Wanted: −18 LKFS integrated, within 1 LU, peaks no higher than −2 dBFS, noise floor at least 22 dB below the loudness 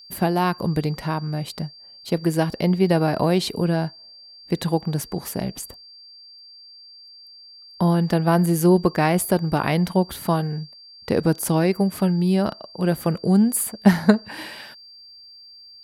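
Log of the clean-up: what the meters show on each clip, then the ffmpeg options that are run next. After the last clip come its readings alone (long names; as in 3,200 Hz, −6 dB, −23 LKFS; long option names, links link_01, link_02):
interfering tone 4,700 Hz; level of the tone −43 dBFS; integrated loudness −21.5 LKFS; sample peak −1.0 dBFS; target loudness −18.0 LKFS
→ -af "bandreject=frequency=4700:width=30"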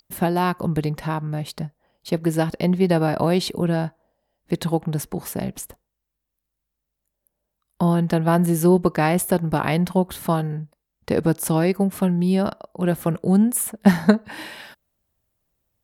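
interfering tone none found; integrated loudness −21.5 LKFS; sample peak −1.0 dBFS; target loudness −18.0 LKFS
→ -af "volume=3.5dB,alimiter=limit=-2dB:level=0:latency=1"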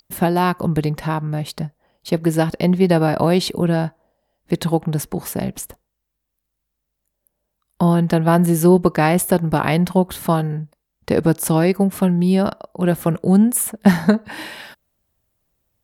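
integrated loudness −18.5 LKFS; sample peak −2.0 dBFS; background noise floor −77 dBFS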